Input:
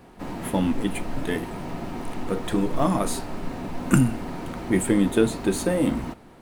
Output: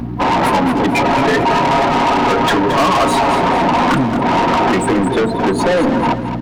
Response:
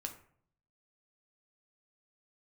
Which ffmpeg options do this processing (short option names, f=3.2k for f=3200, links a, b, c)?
-filter_complex "[0:a]highpass=f=55:p=1,acompressor=threshold=-29dB:ratio=8,asettb=1/sr,asplit=3[a][b][c];[a]atrim=end=0.884[d];[b]atrim=start=0.88:end=3.4,asetpts=PTS-STARTPTS,afade=t=in:d=0.004:c=qsin,afade=t=out:st=2.516:d=0.004:c=qsin,aecho=1:1:7.3:0.37,atrim=end_sample=111132[e];[c]atrim=start=3.396[f];[d][e]acrossfade=d=0.004:c1=hsin:c2=qsin[g];[g][f]acrossfade=d=0.004:c1=qsin:c2=hsin,acrusher=bits=2:mode=log:mix=0:aa=0.000001,aeval=exprs='val(0)+0.0112*(sin(2*PI*60*n/s)+sin(2*PI*2*60*n/s)/2+sin(2*PI*3*60*n/s)/3+sin(2*PI*4*60*n/s)/4+sin(2*PI*5*60*n/s)/5)':c=same,afftdn=nr=26:nf=-36,equalizer=f=125:t=o:w=1:g=7,equalizer=f=250:t=o:w=1:g=4,equalizer=f=500:t=o:w=1:g=4,equalizer=f=1k:t=o:w=1:g=12,equalizer=f=2k:t=o:w=1:g=4,equalizer=f=4k:t=o:w=1:g=4,equalizer=f=8k:t=o:w=1:g=-8,acompressor=mode=upward:threshold=-31dB:ratio=2.5,asplit=2[h][i];[i]highpass=f=720:p=1,volume=34dB,asoftclip=type=tanh:threshold=-6.5dB[j];[h][j]amix=inputs=2:normalize=0,lowpass=f=6.1k:p=1,volume=-6dB,aecho=1:1:223|446|669|892:0.316|0.13|0.0532|0.0218"